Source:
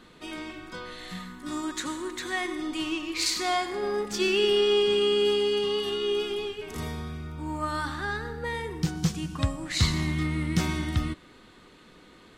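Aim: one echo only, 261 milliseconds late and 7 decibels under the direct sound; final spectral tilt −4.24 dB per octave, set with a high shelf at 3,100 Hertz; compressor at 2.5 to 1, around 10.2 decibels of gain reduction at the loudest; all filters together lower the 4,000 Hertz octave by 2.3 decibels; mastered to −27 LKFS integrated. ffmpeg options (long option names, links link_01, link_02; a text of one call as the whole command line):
ffmpeg -i in.wav -af "highshelf=frequency=3100:gain=3,equalizer=frequency=4000:width_type=o:gain=-5.5,acompressor=threshold=-35dB:ratio=2.5,aecho=1:1:261:0.447,volume=8.5dB" out.wav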